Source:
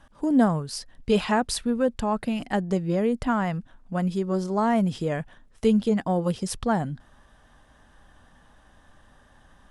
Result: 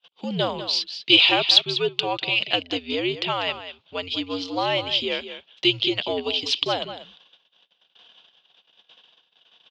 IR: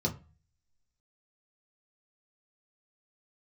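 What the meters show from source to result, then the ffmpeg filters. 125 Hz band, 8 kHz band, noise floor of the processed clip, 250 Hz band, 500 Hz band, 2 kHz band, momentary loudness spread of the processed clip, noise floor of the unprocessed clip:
-8.5 dB, -4.5 dB, -67 dBFS, -7.5 dB, -1.0 dB, +9.0 dB, 14 LU, -57 dBFS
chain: -filter_complex "[0:a]agate=range=0.0251:threshold=0.00251:ratio=16:detection=peak,aemphasis=mode=production:type=50kf,highpass=f=350:t=q:w=0.5412,highpass=f=350:t=q:w=1.307,lowpass=f=3500:t=q:w=0.5176,lowpass=f=3500:t=q:w=0.7071,lowpass=f=3500:t=q:w=1.932,afreqshift=-91,asplit=2[s0][s1];[s1]aecho=0:1:195:0.266[s2];[s0][s2]amix=inputs=2:normalize=0,aexciter=amount=15.2:drive=5.4:freq=2600"

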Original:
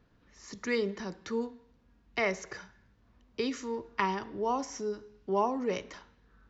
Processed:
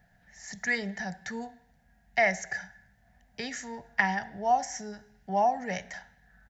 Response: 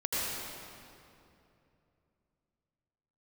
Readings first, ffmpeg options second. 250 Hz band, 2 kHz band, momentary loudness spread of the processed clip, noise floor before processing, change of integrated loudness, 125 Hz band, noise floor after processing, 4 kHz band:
-2.0 dB, +8.0 dB, 19 LU, -66 dBFS, +3.0 dB, +2.5 dB, -65 dBFS, +0.5 dB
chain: -af "firequalizer=gain_entry='entry(120,0);entry(170,6);entry(310,-15);entry(480,-8);entry(730,14);entry(1100,-14);entry(1700,13);entry(2500,-1);entry(4200,0);entry(8200,11)':delay=0.05:min_phase=1"

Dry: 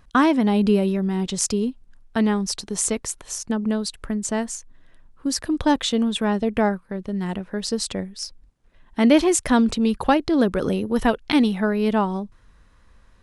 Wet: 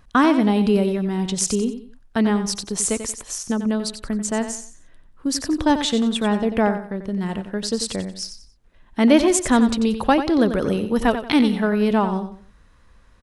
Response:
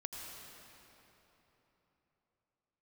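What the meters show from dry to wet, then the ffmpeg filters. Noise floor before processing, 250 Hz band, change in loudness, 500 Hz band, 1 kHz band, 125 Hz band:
-55 dBFS, +1.5 dB, +1.5 dB, +1.5 dB, +1.5 dB, +1.0 dB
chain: -af "aecho=1:1:91|182|273:0.316|0.0949|0.0285,volume=1.12"

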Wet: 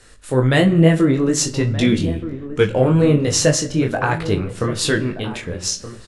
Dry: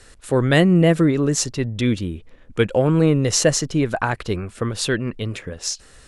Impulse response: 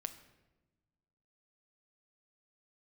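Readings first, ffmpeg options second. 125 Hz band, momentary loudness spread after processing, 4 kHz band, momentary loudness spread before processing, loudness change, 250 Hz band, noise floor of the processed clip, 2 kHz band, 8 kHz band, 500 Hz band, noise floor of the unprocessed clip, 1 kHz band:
+2.5 dB, 10 LU, +2.0 dB, 13 LU, +2.0 dB, +2.0 dB, -40 dBFS, +2.0 dB, +2.0 dB, +2.0 dB, -48 dBFS, +2.0 dB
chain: -filter_complex "[0:a]dynaudnorm=f=280:g=3:m=1.88,flanger=delay=18.5:depth=5.2:speed=1.2,asplit=2[s0][s1];[s1]adelay=39,volume=0.224[s2];[s0][s2]amix=inputs=2:normalize=0,asplit=2[s3][s4];[s4]adelay=1224,volume=0.224,highshelf=f=4000:g=-27.6[s5];[s3][s5]amix=inputs=2:normalize=0,asplit=2[s6][s7];[1:a]atrim=start_sample=2205[s8];[s7][s8]afir=irnorm=-1:irlink=0,volume=1.58[s9];[s6][s9]amix=inputs=2:normalize=0,volume=0.631"

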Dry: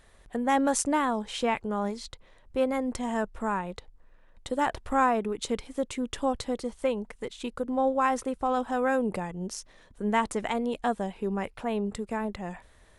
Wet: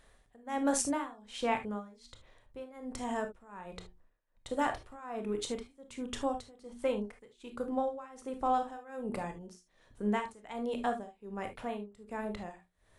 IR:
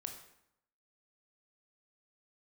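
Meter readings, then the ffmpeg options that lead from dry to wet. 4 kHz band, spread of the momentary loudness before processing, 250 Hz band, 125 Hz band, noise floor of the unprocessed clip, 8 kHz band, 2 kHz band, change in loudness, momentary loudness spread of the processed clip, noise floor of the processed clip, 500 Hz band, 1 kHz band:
-6.5 dB, 12 LU, -7.5 dB, -7.5 dB, -58 dBFS, -4.5 dB, -8.5 dB, -7.0 dB, 17 LU, -70 dBFS, -7.5 dB, -7.5 dB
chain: -filter_complex "[0:a]bandreject=f=60:t=h:w=6,bandreject=f=120:t=h:w=6,bandreject=f=180:t=h:w=6,bandreject=f=240:t=h:w=6,bandreject=f=300:t=h:w=6,bandreject=f=360:t=h:w=6,tremolo=f=1.3:d=0.93[s0];[1:a]atrim=start_sample=2205,atrim=end_sample=3528[s1];[s0][s1]afir=irnorm=-1:irlink=0"

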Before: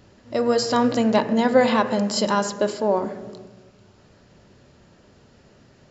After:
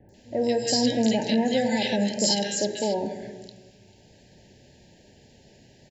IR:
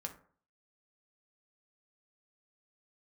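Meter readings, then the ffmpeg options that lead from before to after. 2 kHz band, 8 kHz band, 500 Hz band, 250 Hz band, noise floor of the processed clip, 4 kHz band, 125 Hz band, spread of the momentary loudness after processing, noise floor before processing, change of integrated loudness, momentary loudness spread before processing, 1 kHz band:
-5.0 dB, no reading, -5.0 dB, -2.5 dB, -56 dBFS, +2.5 dB, -2.0 dB, 11 LU, -54 dBFS, -3.5 dB, 11 LU, -9.0 dB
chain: -filter_complex "[0:a]highshelf=f=2800:g=9,acrossover=split=230|2400[s0][s1][s2];[s1]alimiter=limit=0.158:level=0:latency=1[s3];[s0][s3][s2]amix=inputs=3:normalize=0,asuperstop=centerf=1200:order=20:qfactor=1.9,acrossover=split=1500|5800[s4][s5][s6];[s6]adelay=90[s7];[s5]adelay=140[s8];[s4][s8][s7]amix=inputs=3:normalize=0,volume=0.841"

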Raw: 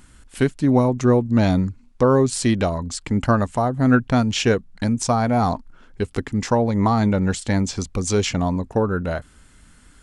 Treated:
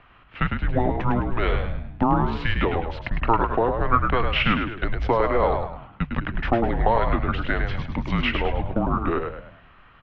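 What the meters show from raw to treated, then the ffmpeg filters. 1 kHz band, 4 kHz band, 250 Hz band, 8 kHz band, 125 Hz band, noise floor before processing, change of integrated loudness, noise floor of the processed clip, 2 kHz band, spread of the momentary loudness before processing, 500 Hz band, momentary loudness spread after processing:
+1.0 dB, -2.0 dB, -7.5 dB, under -35 dB, -5.5 dB, -51 dBFS, -3.5 dB, -52 dBFS, +2.0 dB, 8 LU, -4.0 dB, 8 LU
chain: -filter_complex "[0:a]bandreject=f=63.14:t=h:w=4,bandreject=f=126.28:t=h:w=4,bandreject=f=189.42:t=h:w=4,bandreject=f=252.56:t=h:w=4,bandreject=f=315.7:t=h:w=4,bandreject=f=378.84:t=h:w=4,acrossover=split=130|950[s0][s1][s2];[s1]acompressor=threshold=0.0501:ratio=6[s3];[s0][s3][s2]amix=inputs=3:normalize=0,acrusher=bits=8:mode=log:mix=0:aa=0.000001,asplit=6[s4][s5][s6][s7][s8][s9];[s5]adelay=104,afreqshift=65,volume=0.501[s10];[s6]adelay=208,afreqshift=130,volume=0.191[s11];[s7]adelay=312,afreqshift=195,volume=0.0724[s12];[s8]adelay=416,afreqshift=260,volume=0.0275[s13];[s9]adelay=520,afreqshift=325,volume=0.0105[s14];[s4][s10][s11][s12][s13][s14]amix=inputs=6:normalize=0,highpass=f=200:t=q:w=0.5412,highpass=f=200:t=q:w=1.307,lowpass=f=3200:t=q:w=0.5176,lowpass=f=3200:t=q:w=0.7071,lowpass=f=3200:t=q:w=1.932,afreqshift=-240,volume=1.68"

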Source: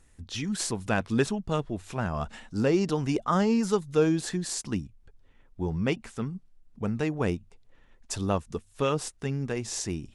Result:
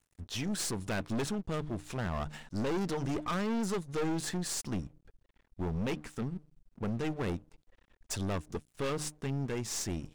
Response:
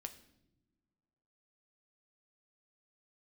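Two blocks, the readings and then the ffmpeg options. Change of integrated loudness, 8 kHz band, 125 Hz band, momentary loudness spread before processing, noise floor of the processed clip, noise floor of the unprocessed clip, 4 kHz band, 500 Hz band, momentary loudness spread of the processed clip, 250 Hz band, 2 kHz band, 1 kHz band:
-6.5 dB, -3.0 dB, -5.0 dB, 11 LU, -75 dBFS, -59 dBFS, -3.5 dB, -8.0 dB, 6 LU, -6.5 dB, -5.5 dB, -6.5 dB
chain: -af "bandreject=f=151.2:t=h:w=4,bandreject=f=302.4:t=h:w=4,aeval=exprs='(tanh(35.5*val(0)+0.45)-tanh(0.45))/35.5':c=same,aeval=exprs='sgn(val(0))*max(abs(val(0))-0.00141,0)':c=same,volume=1.19"

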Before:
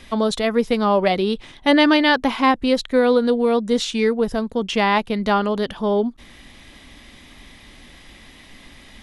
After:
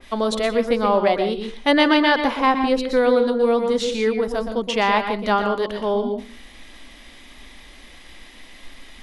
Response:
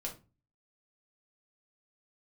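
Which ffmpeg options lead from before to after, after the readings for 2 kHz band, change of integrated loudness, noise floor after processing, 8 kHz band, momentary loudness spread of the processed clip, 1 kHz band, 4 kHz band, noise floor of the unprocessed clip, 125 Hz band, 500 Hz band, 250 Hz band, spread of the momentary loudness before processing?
-0.5 dB, -1.0 dB, -45 dBFS, -2.0 dB, 7 LU, +0.5 dB, -1.5 dB, -46 dBFS, no reading, 0.0 dB, -3.0 dB, 7 LU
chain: -filter_complex "[0:a]equalizer=f=120:t=o:w=1.3:g=-14,asplit=2[s0][s1];[1:a]atrim=start_sample=2205,adelay=119[s2];[s1][s2]afir=irnorm=-1:irlink=0,volume=0.501[s3];[s0][s3]amix=inputs=2:normalize=0,adynamicequalizer=threshold=0.0282:dfrequency=2100:dqfactor=0.7:tfrequency=2100:tqfactor=0.7:attack=5:release=100:ratio=0.375:range=3:mode=cutabove:tftype=highshelf"

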